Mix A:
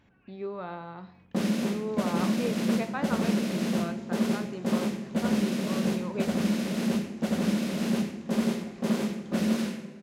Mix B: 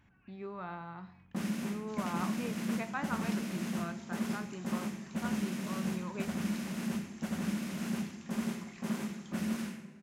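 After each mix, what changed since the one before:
first sound -4.0 dB; second sound: add tilt shelf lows -9 dB, about 920 Hz; master: add ten-band EQ 250 Hz -3 dB, 500 Hz -11 dB, 4000 Hz -7 dB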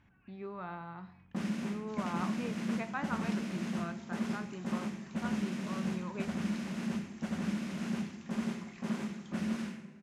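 master: add air absorption 57 m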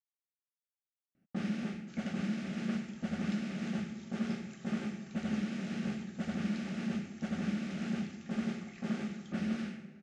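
speech: muted; first sound: add LPF 5700 Hz 12 dB/oct; master: add Butterworth band-stop 1000 Hz, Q 4.5

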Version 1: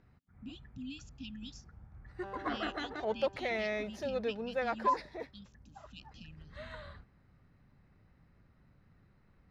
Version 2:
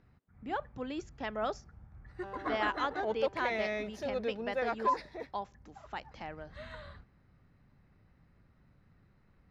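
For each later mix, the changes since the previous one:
speech: remove brick-wall FIR band-stop 290–2400 Hz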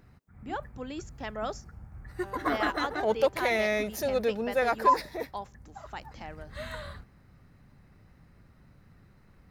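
first sound +7.5 dB; master: remove LPF 4500 Hz 12 dB/oct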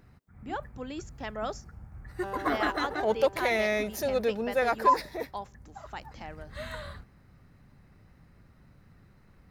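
second sound +8.0 dB

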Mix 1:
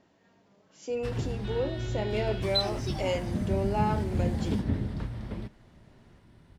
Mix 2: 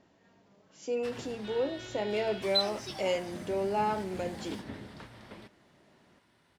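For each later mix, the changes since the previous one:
background: add HPF 900 Hz 6 dB/oct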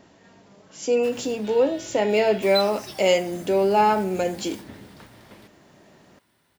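speech +11.0 dB; master: remove air absorption 56 m

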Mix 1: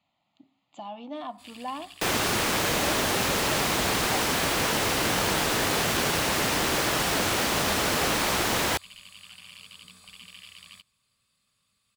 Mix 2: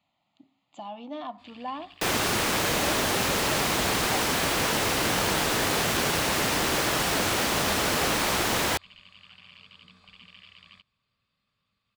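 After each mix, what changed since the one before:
first sound: add air absorption 220 m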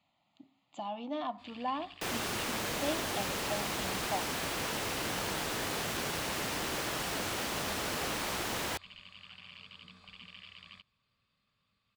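second sound -10.0 dB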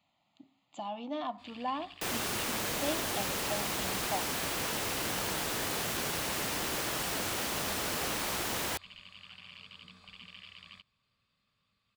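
master: add high shelf 7900 Hz +6.5 dB

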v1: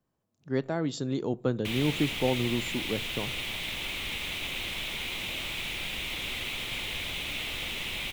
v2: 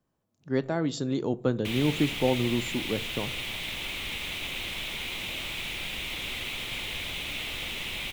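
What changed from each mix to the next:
speech: send +7.0 dB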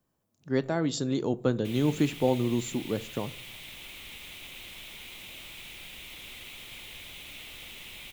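background -11.5 dB; master: add high shelf 7100 Hz +9 dB

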